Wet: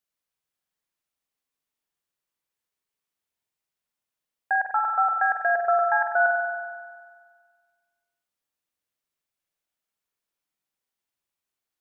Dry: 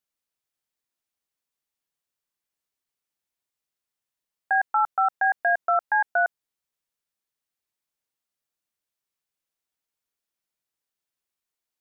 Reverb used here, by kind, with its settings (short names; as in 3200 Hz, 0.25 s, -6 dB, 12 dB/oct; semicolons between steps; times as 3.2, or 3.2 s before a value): spring tank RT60 1.7 s, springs 46 ms, chirp 65 ms, DRR 1.5 dB; gain -1 dB